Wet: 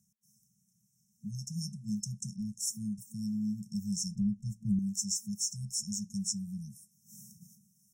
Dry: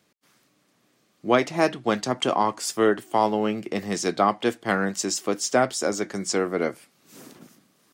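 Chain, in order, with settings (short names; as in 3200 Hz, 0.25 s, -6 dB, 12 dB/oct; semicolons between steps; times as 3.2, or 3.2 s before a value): FFT band-reject 220–5300 Hz; 4.15–4.79 tilt -3 dB/oct; in parallel at +2 dB: compressor, threshold -31 dBFS, peak gain reduction 11 dB; on the sum: gain -8.5 dB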